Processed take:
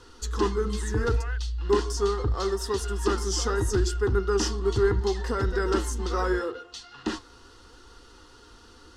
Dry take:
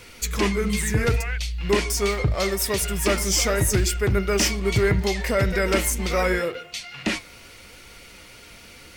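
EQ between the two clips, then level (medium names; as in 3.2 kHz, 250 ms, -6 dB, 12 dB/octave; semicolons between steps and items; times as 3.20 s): low-pass 6.5 kHz 12 dB/octave; treble shelf 4.9 kHz -6.5 dB; static phaser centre 610 Hz, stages 6; 0.0 dB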